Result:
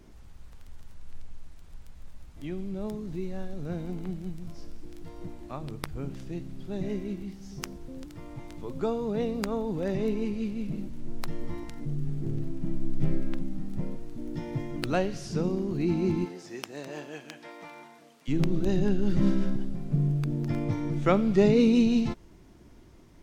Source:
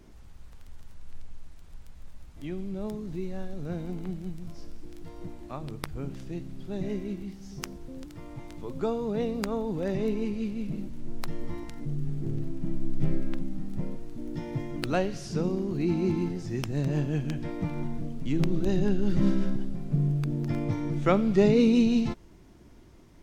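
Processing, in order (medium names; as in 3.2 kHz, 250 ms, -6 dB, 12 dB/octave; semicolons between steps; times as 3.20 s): 16.24–18.27 s: high-pass 380 Hz -> 1 kHz 12 dB/octave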